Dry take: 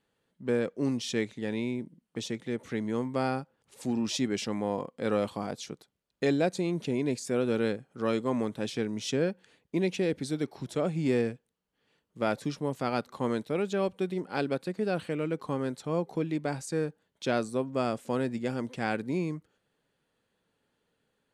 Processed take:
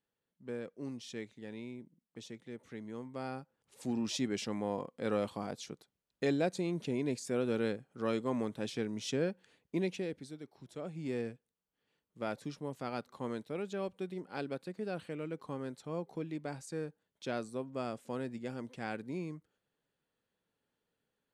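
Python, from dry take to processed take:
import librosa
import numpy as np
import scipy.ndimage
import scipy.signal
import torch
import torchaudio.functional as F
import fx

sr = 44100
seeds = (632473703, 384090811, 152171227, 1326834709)

y = fx.gain(x, sr, db=fx.line((3.09, -13.0), (3.9, -5.0), (9.8, -5.0), (10.43, -17.0), (11.29, -9.0)))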